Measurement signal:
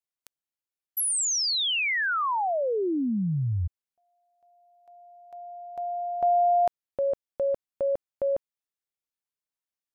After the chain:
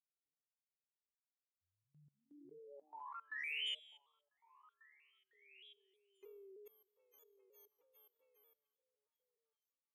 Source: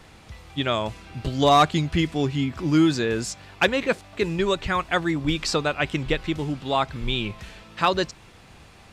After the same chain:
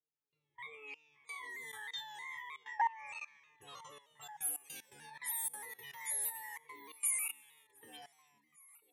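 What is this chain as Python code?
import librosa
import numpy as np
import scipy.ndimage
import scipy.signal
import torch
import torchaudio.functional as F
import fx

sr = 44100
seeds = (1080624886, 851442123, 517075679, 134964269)

p1 = fx.octave_mirror(x, sr, pivot_hz=530.0)
p2 = fx.fixed_phaser(p1, sr, hz=1000.0, stages=8)
p3 = fx.rider(p2, sr, range_db=4, speed_s=2.0)
p4 = p2 + (p3 * librosa.db_to_amplitude(2.0))
p5 = fx.high_shelf(p4, sr, hz=2400.0, db=10.0)
p6 = fx.env_lowpass(p5, sr, base_hz=350.0, full_db=-17.5)
p7 = fx.resonator_bank(p6, sr, root=50, chord='fifth', decay_s=0.63)
p8 = fx.level_steps(p7, sr, step_db=22)
p9 = np.diff(p8, prepend=0.0)
p10 = p9 + fx.echo_stepped(p9, sr, ms=497, hz=180.0, octaves=1.4, feedback_pct=70, wet_db=-11.5, dry=0)
p11 = fx.vibrato_shape(p10, sr, shape='saw_down', rate_hz=3.2, depth_cents=100.0)
y = p11 * librosa.db_to_amplitude(11.0)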